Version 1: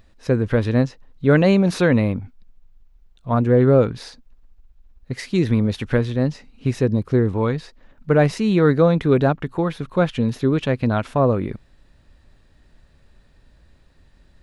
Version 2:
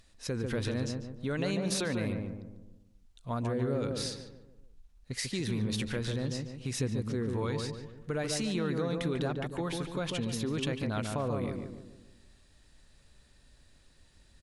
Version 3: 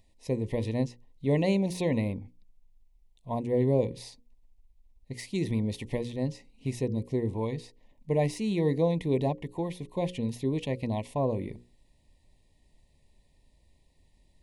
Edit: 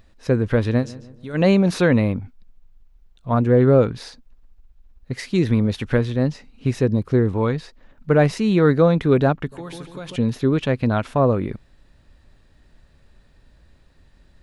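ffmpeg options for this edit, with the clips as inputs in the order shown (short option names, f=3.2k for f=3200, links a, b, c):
-filter_complex "[1:a]asplit=2[a][b];[0:a]asplit=3[c][d][e];[c]atrim=end=0.86[f];[a]atrim=start=0.76:end=1.43[g];[d]atrim=start=1.33:end=9.522[h];[b]atrim=start=9.518:end=10.162[i];[e]atrim=start=10.158[j];[f][g]acrossfade=d=0.1:c1=tri:c2=tri[k];[k][h]acrossfade=d=0.1:c1=tri:c2=tri[l];[l][i]acrossfade=d=0.004:c1=hsin:c2=hsin[m];[m][j]acrossfade=d=0.004:c1=hsin:c2=hsin"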